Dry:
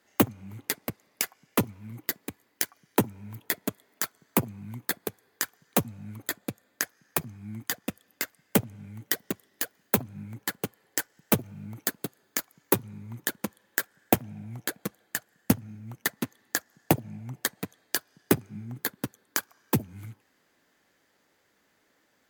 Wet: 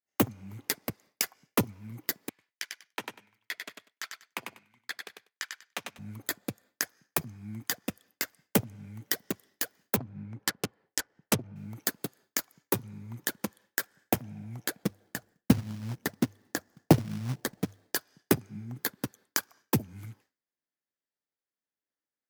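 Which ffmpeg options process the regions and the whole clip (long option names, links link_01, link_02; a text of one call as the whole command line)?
ffmpeg -i in.wav -filter_complex "[0:a]asettb=1/sr,asplit=3[link_01][link_02][link_03];[link_01]atrim=end=2.294[link_04];[link_02]atrim=start=2.29:end=5.99,asetpts=PTS-STARTPTS,afade=type=in:duration=0.004:curve=qsin,afade=type=out:start_time=3.696:duration=0.004:curve=qsin,bandpass=frequency=2500:width_type=q:width=1.2,aecho=1:1:97|194|291:0.562|0.107|0.0203,atrim=end_sample=163170[link_05];[link_03]atrim=start=5.986[link_06];[link_04][link_05]acrossfade=duration=0.004:curve1=hsin:curve2=qsin[link_07];[link_07][link_06]acrossfade=duration=0.004:curve1=qsin:curve2=hsin,asettb=1/sr,asplit=3[link_08][link_09][link_10];[link_08]atrim=end=9.964[link_11];[link_09]atrim=start=9.96:end=11.56,asetpts=PTS-STARTPTS,afade=type=in:duration=0.004:curve=qsin,afade=type=out:start_time=1.596:duration=0.004:curve=qsin,highshelf=frequency=3000:gain=10,adynamicsmooth=sensitivity=5.5:basefreq=1400[link_12];[link_10]atrim=start=11.556[link_13];[link_11][link_12]acrossfade=duration=0.004:curve1=hsin:curve2=qsin[link_14];[link_14][link_13]acrossfade=duration=0.004:curve1=qsin:curve2=hsin,asettb=1/sr,asplit=3[link_15][link_16][link_17];[link_15]atrim=end=14.834[link_18];[link_16]atrim=start=14.83:end=17.95,asetpts=PTS-STARTPTS,afade=type=in:duration=0.004:curve=qsin,afade=type=out:start_time=3.116:duration=0.004:curve=qsin,tiltshelf=frequency=800:gain=7.5,bandreject=frequency=50:width_type=h:width=6,bandreject=frequency=100:width_type=h:width=6,acrusher=bits=3:mode=log:mix=0:aa=0.000001[link_19];[link_17]atrim=start=17.946[link_20];[link_18][link_19]acrossfade=duration=0.004:curve1=hsin:curve2=qsin[link_21];[link_21][link_20]acrossfade=duration=0.004:curve1=qsin:curve2=hsin,agate=range=-33dB:threshold=-51dB:ratio=3:detection=peak,equalizer=frequency=5300:width_type=o:width=0.43:gain=4.5,alimiter=level_in=5dB:limit=-1dB:release=50:level=0:latency=1,volume=-6.5dB" out.wav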